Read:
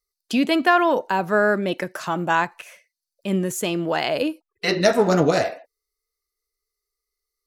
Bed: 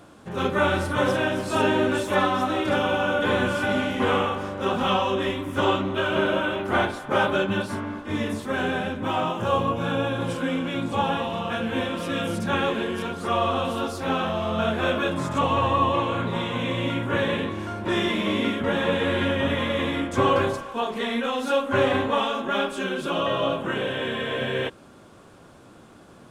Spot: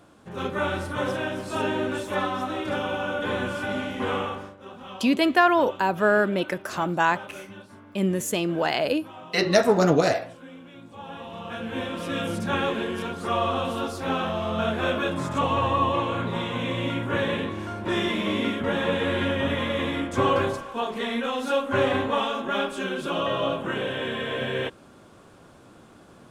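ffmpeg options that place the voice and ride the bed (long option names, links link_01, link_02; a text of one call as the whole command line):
ffmpeg -i stem1.wav -i stem2.wav -filter_complex "[0:a]adelay=4700,volume=-1.5dB[link_01];[1:a]volume=11.5dB,afade=type=out:start_time=4.35:duration=0.22:silence=0.223872,afade=type=in:start_time=10.99:duration=1.18:silence=0.149624[link_02];[link_01][link_02]amix=inputs=2:normalize=0" out.wav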